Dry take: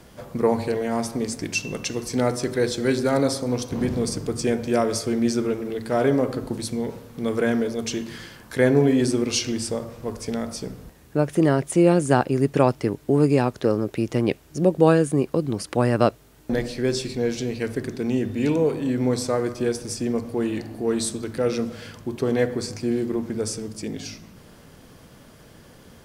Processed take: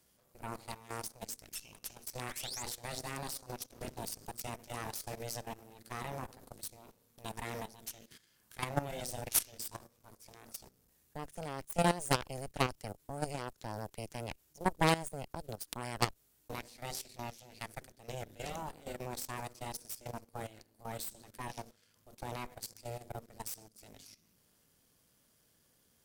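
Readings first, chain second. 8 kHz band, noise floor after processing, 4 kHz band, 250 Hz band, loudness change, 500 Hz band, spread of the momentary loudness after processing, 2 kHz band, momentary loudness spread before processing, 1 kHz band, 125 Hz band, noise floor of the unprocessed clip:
-9.5 dB, -71 dBFS, -10.5 dB, -22.5 dB, -16.5 dB, -21.0 dB, 16 LU, -11.5 dB, 11 LU, -9.5 dB, -16.5 dB, -49 dBFS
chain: painted sound rise, 2.21–2.63 s, 1–8 kHz -32 dBFS; Chebyshev shaper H 3 -8 dB, 6 -10 dB, 8 -25 dB, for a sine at -2.5 dBFS; pre-emphasis filter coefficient 0.8; level held to a coarse grid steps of 15 dB; trim +4 dB

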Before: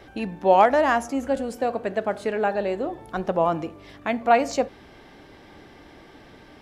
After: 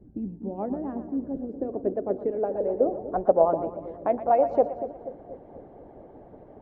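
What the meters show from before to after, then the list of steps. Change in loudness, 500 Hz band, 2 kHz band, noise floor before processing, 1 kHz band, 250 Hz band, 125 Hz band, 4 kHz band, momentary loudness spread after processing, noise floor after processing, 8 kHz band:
-3.5 dB, -1.5 dB, under -20 dB, -49 dBFS, -6.5 dB, -2.5 dB, -4.5 dB, under -30 dB, 18 LU, -50 dBFS, under -35 dB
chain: low-pass sweep 230 Hz -> 640 Hz, 0.49–3.28 s; two-band feedback delay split 540 Hz, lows 241 ms, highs 118 ms, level -10 dB; harmonic-percussive split harmonic -12 dB; trim +2 dB

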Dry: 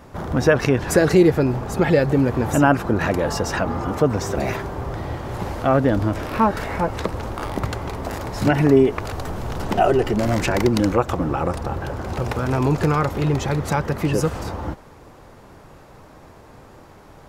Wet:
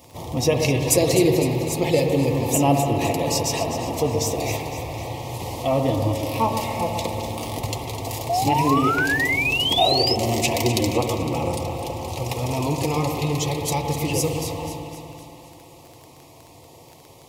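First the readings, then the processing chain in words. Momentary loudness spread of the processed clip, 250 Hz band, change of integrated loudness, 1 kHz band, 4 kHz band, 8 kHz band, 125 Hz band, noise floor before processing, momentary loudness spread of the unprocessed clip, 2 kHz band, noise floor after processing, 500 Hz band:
12 LU, -3.5 dB, -1.0 dB, 0.0 dB, +10.0 dB, +8.0 dB, -2.0 dB, -46 dBFS, 12 LU, +0.5 dB, -47 dBFS, -2.5 dB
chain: Butterworth band-stop 1.5 kHz, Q 1.2; tilt EQ +3 dB/octave; echo whose repeats swap between lows and highs 127 ms, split 1.2 kHz, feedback 71%, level -7 dB; spring tank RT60 3.2 s, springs 57 ms, chirp 55 ms, DRR 5 dB; painted sound rise, 8.29–10.15 s, 670–5300 Hz -21 dBFS; comb of notches 200 Hz; crackle 17 per s -32 dBFS; peaking EQ 110 Hz +7.5 dB 0.71 oct

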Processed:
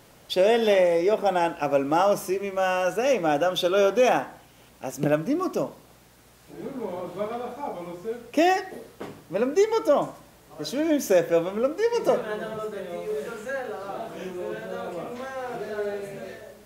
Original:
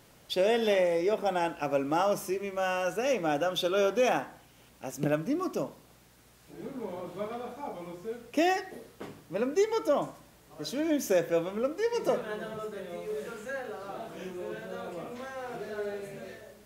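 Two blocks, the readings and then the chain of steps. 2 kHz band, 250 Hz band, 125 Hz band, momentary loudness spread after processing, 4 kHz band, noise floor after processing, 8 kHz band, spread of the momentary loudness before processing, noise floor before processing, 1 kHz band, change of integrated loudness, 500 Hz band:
+4.5 dB, +5.0 dB, +4.5 dB, 14 LU, +4.0 dB, -54 dBFS, +4.0 dB, 14 LU, -59 dBFS, +6.0 dB, +6.0 dB, +6.0 dB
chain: peaking EQ 680 Hz +2.5 dB 1.8 oct; trim +4 dB

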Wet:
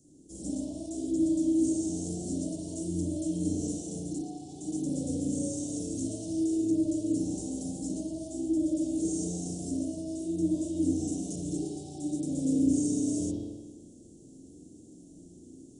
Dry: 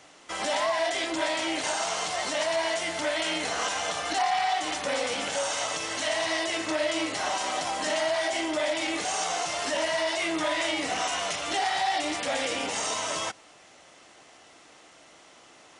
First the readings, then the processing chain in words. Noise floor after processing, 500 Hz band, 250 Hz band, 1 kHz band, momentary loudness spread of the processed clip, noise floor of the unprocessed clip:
-52 dBFS, -8.5 dB, +9.0 dB, under -25 dB, 11 LU, -54 dBFS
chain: treble shelf 4.3 kHz -7 dB; spring tank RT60 1.3 s, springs 34/45 ms, chirp 30 ms, DRR -7.5 dB; gain riding 0.5 s; elliptic band-stop 300–7400 Hz, stop band 80 dB; trim +2 dB

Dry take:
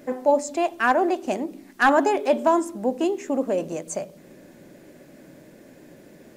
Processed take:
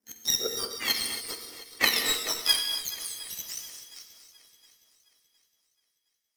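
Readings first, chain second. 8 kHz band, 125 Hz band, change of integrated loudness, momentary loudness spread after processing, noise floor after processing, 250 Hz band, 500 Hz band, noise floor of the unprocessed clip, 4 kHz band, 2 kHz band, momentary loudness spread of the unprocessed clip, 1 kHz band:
+7.5 dB, under -10 dB, -4.5 dB, 18 LU, -79 dBFS, -21.5 dB, -19.5 dB, -50 dBFS, +15.0 dB, -5.5 dB, 11 LU, -19.0 dB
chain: spectrum inverted on a logarithmic axis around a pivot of 1.8 kHz; high-pass sweep 180 Hz -> 2.3 kHz, 2.00–2.74 s; power-law waveshaper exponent 2; shuffle delay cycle 714 ms, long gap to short 1.5:1, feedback 34%, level -16.5 dB; gated-style reverb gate 310 ms flat, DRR 4 dB; trim +6 dB

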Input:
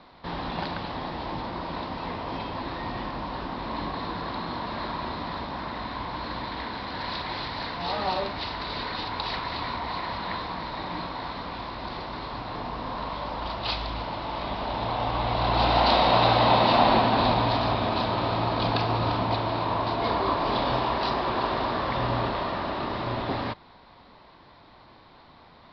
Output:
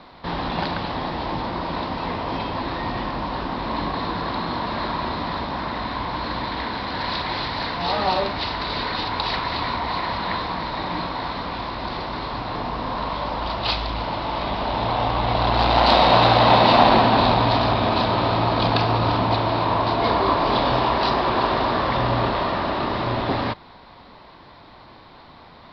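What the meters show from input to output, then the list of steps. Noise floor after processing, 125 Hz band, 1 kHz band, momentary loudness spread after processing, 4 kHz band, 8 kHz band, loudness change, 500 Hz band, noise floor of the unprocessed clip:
-46 dBFS, +5.5 dB, +5.5 dB, 12 LU, +5.5 dB, no reading, +5.5 dB, +5.5 dB, -52 dBFS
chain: transformer saturation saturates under 570 Hz; trim +6.5 dB

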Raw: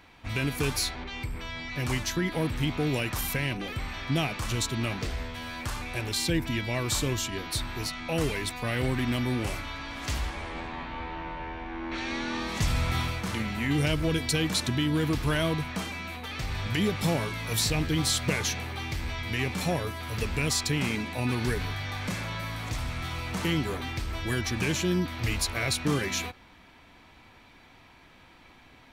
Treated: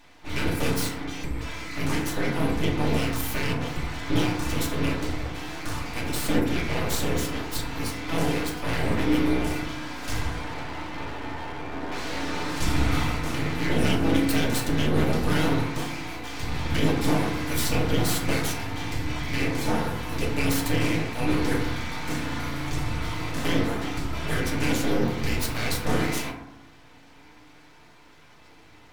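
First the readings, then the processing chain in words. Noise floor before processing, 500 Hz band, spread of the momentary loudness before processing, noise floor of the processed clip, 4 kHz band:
-55 dBFS, +4.0 dB, 9 LU, -51 dBFS, -0.5 dB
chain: octave divider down 2 oct, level 0 dB; full-wave rectifier; hum notches 50/100 Hz; FDN reverb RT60 0.86 s, low-frequency decay 1.35×, high-frequency decay 0.35×, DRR -2 dB

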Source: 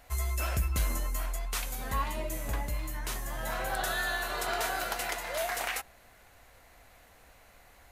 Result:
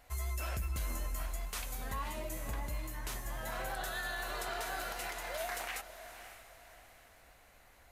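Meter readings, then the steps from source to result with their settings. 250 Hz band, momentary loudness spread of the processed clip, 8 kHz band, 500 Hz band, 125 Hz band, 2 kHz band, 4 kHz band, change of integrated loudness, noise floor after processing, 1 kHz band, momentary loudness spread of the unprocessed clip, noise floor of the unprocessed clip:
-5.5 dB, 15 LU, -6.0 dB, -6.0 dB, -6.0 dB, -6.5 dB, -6.5 dB, -6.5 dB, -61 dBFS, -6.5 dB, 6 LU, -58 dBFS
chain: vibrato 8.1 Hz 19 cents; echo that smears into a reverb 556 ms, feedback 41%, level -13.5 dB; peak limiter -24 dBFS, peak gain reduction 6 dB; trim -5 dB

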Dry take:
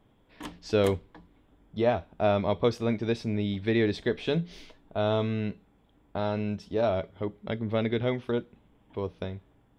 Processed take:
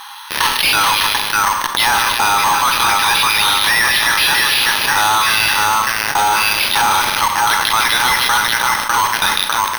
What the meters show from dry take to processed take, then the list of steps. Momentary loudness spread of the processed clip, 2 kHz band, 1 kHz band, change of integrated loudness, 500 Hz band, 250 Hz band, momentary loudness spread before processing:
3 LU, +26.5 dB, +24.0 dB, +16.5 dB, -2.5 dB, -3.0 dB, 13 LU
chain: FFT band-pass 800–5200 Hz; band-stop 2.2 kHz, Q 6.6; low-pass that closes with the level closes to 2.4 kHz, closed at -36 dBFS; treble shelf 3.5 kHz +6.5 dB; on a send: two-band feedback delay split 2.1 kHz, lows 601 ms, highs 152 ms, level -8 dB; on the sum: careless resampling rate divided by 6×, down none, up hold; in parallel at -12 dB: fuzz box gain 47 dB, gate -55 dBFS; on the sum: Schroeder reverb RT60 0.64 s, combs from 29 ms, DRR 12 dB; loudness maximiser +26.5 dB; level flattener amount 50%; trim -7.5 dB

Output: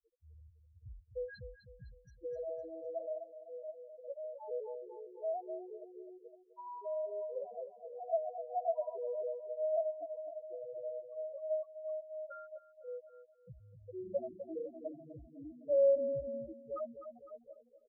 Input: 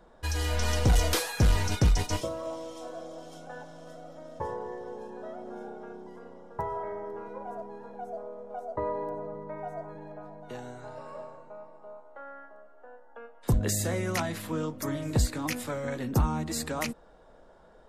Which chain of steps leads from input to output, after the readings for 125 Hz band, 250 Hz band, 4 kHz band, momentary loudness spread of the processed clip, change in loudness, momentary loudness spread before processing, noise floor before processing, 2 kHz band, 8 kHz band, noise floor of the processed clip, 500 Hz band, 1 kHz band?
under -25 dB, -17.5 dB, under -35 dB, 18 LU, -8.0 dB, 20 LU, -55 dBFS, under -20 dB, under -40 dB, -66 dBFS, 0.0 dB, -9.5 dB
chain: drifting ripple filter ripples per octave 0.69, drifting +1.8 Hz, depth 6 dB; gate with hold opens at -45 dBFS; in parallel at -2 dB: compression, threshold -36 dBFS, peak gain reduction 17 dB; on the sum: doubling 16 ms -11.5 dB; reverse; upward compressor, threshold -37 dBFS; reverse; loudest bins only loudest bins 1; feedback delay 254 ms, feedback 42%, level -8.5 dB; talking filter a-e 0.59 Hz; trim +9 dB

